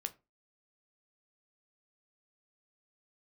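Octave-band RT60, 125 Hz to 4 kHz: 0.30, 0.30, 0.30, 0.25, 0.20, 0.20 s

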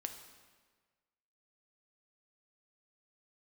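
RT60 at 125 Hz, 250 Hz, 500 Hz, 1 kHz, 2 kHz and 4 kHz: 1.5, 1.4, 1.5, 1.4, 1.4, 1.2 s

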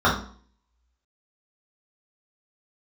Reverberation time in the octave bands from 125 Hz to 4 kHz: 0.50, 0.55, 0.50, 0.50, 0.40, 0.40 s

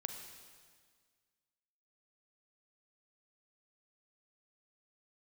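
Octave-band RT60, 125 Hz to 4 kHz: 1.9, 1.9, 1.8, 1.7, 1.7, 1.7 s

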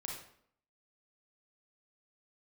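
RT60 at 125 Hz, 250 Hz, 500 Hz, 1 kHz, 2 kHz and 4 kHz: 0.60, 0.70, 0.65, 0.60, 0.55, 0.50 s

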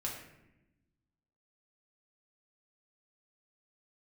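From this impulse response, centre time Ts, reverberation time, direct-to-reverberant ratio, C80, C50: 40 ms, 0.90 s, -3.0 dB, 7.0 dB, 4.5 dB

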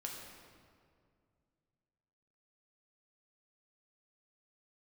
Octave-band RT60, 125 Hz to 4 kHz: 3.1, 2.7, 2.3, 2.0, 1.7, 1.4 s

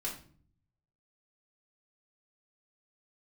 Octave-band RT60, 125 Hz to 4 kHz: 1.1, 0.80, 0.55, 0.40, 0.40, 0.35 s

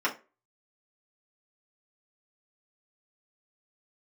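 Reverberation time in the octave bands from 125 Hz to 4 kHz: 0.30, 0.30, 0.35, 0.30, 0.30, 0.20 s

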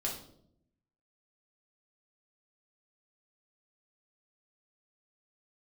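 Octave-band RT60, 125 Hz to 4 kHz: 1.1, 1.0, 0.85, 0.55, 0.45, 0.50 s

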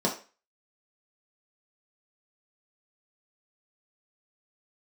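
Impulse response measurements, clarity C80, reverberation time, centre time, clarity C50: 15.0 dB, 0.35 s, 21 ms, 9.5 dB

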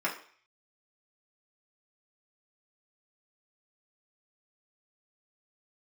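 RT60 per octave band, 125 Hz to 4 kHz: 0.35, 0.40, 0.45, 0.50, 0.55, 0.55 s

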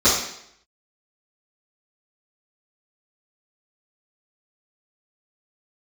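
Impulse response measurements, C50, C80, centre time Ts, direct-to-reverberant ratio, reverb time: 2.5 dB, 6.5 dB, 50 ms, -14.0 dB, 0.70 s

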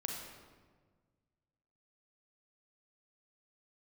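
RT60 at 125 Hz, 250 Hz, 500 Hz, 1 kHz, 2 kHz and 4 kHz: 2.3, 1.9, 1.6, 1.4, 1.2, 0.95 s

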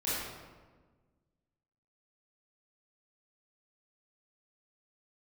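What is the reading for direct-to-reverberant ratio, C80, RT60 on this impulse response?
-11.0 dB, 0.0 dB, 1.4 s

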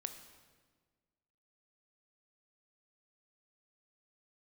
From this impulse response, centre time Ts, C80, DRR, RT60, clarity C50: 19 ms, 11.0 dB, 7.5 dB, 1.5 s, 9.5 dB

